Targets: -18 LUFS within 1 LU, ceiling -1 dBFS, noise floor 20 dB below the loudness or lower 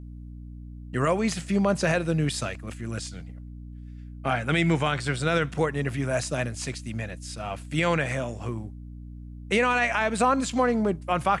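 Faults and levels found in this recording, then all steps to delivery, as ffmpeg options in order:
hum 60 Hz; harmonics up to 300 Hz; hum level -38 dBFS; loudness -26.5 LUFS; peak -11.5 dBFS; loudness target -18.0 LUFS
-> -af "bandreject=f=60:t=h:w=6,bandreject=f=120:t=h:w=6,bandreject=f=180:t=h:w=6,bandreject=f=240:t=h:w=6,bandreject=f=300:t=h:w=6"
-af "volume=8.5dB"

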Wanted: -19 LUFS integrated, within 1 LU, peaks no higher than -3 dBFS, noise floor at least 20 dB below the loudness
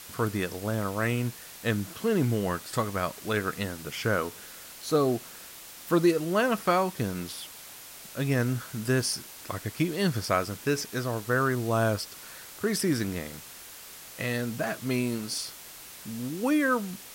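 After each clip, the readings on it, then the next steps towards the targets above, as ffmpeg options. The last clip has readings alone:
noise floor -46 dBFS; noise floor target -49 dBFS; loudness -29.0 LUFS; peak -11.5 dBFS; loudness target -19.0 LUFS
-> -af "afftdn=nr=6:nf=-46"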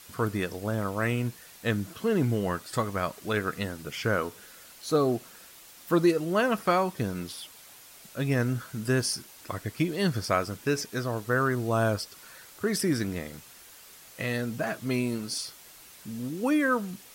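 noise floor -51 dBFS; loudness -29.0 LUFS; peak -11.5 dBFS; loudness target -19.0 LUFS
-> -af "volume=10dB,alimiter=limit=-3dB:level=0:latency=1"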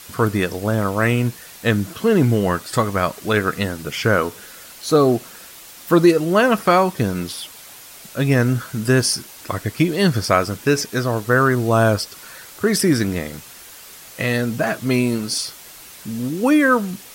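loudness -19.0 LUFS; peak -3.0 dBFS; noise floor -41 dBFS

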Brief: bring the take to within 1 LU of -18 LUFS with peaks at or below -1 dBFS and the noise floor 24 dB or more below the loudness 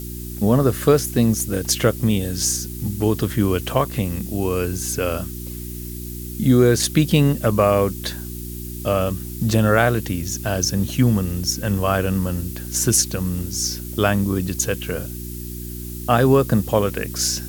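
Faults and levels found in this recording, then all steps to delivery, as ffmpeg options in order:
hum 60 Hz; harmonics up to 360 Hz; hum level -30 dBFS; noise floor -32 dBFS; noise floor target -44 dBFS; loudness -20.0 LUFS; peak -1.5 dBFS; loudness target -18.0 LUFS
-> -af "bandreject=f=60:t=h:w=4,bandreject=f=120:t=h:w=4,bandreject=f=180:t=h:w=4,bandreject=f=240:t=h:w=4,bandreject=f=300:t=h:w=4,bandreject=f=360:t=h:w=4"
-af "afftdn=nr=12:nf=-32"
-af "volume=2dB,alimiter=limit=-1dB:level=0:latency=1"

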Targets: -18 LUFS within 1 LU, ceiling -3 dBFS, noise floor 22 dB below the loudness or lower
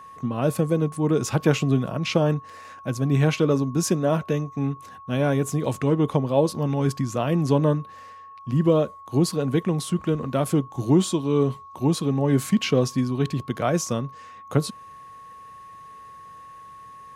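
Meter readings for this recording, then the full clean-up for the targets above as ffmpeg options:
steady tone 1100 Hz; tone level -41 dBFS; loudness -23.5 LUFS; peak -5.5 dBFS; loudness target -18.0 LUFS
-> -af "bandreject=f=1.1k:w=30"
-af "volume=5.5dB,alimiter=limit=-3dB:level=0:latency=1"

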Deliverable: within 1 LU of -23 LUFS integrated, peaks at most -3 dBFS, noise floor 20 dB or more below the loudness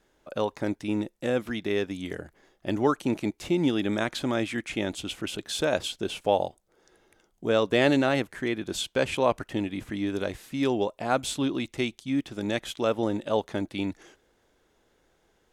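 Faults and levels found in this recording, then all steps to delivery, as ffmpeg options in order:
loudness -28.5 LUFS; peak -9.0 dBFS; loudness target -23.0 LUFS
-> -af "volume=5.5dB"

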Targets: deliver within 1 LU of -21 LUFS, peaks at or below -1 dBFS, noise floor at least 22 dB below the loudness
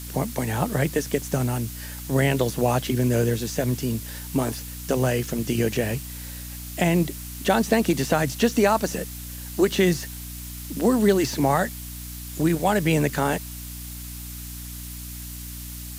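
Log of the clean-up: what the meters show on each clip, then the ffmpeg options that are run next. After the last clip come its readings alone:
hum 60 Hz; harmonics up to 300 Hz; hum level -36 dBFS; noise floor -36 dBFS; noise floor target -46 dBFS; loudness -24.0 LUFS; peak -6.0 dBFS; loudness target -21.0 LUFS
-> -af "bandreject=f=60:t=h:w=4,bandreject=f=120:t=h:w=4,bandreject=f=180:t=h:w=4,bandreject=f=240:t=h:w=4,bandreject=f=300:t=h:w=4"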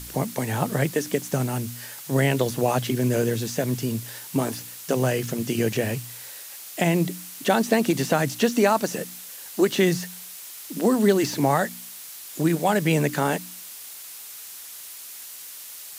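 hum none; noise floor -40 dBFS; noise floor target -46 dBFS
-> -af "afftdn=nr=6:nf=-40"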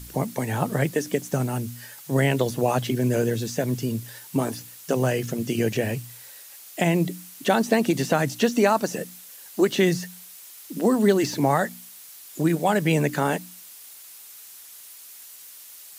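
noise floor -45 dBFS; noise floor target -46 dBFS
-> -af "afftdn=nr=6:nf=-45"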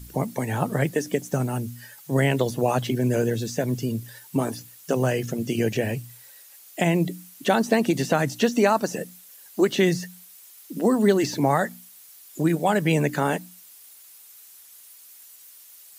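noise floor -49 dBFS; loudness -24.0 LUFS; peak -7.0 dBFS; loudness target -21.0 LUFS
-> -af "volume=3dB"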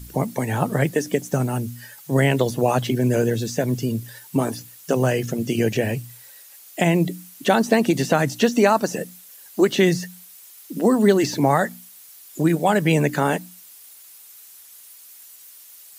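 loudness -21.0 LUFS; peak -4.0 dBFS; noise floor -46 dBFS

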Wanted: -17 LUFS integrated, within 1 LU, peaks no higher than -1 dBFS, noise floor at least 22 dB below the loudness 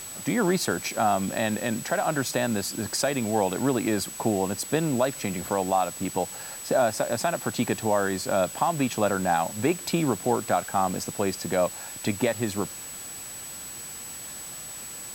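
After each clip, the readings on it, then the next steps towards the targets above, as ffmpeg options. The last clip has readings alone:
steady tone 7900 Hz; tone level -38 dBFS; noise floor -39 dBFS; noise floor target -49 dBFS; loudness -27.0 LUFS; peak -11.0 dBFS; loudness target -17.0 LUFS
-> -af "bandreject=f=7.9k:w=30"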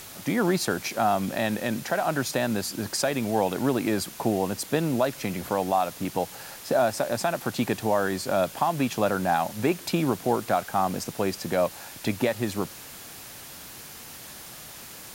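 steady tone none; noise floor -43 dBFS; noise floor target -49 dBFS
-> -af "afftdn=nr=6:nf=-43"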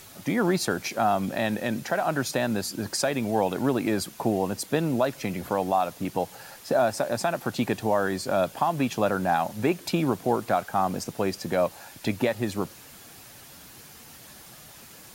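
noise floor -48 dBFS; noise floor target -49 dBFS
-> -af "afftdn=nr=6:nf=-48"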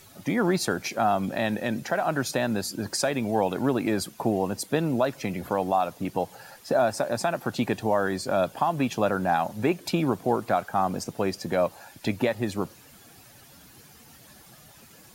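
noise floor -52 dBFS; loudness -27.0 LUFS; peak -11.5 dBFS; loudness target -17.0 LUFS
-> -af "volume=10dB"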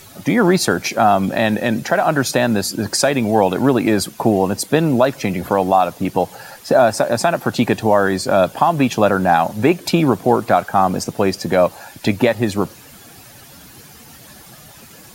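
loudness -17.0 LUFS; peak -1.5 dBFS; noise floor -42 dBFS

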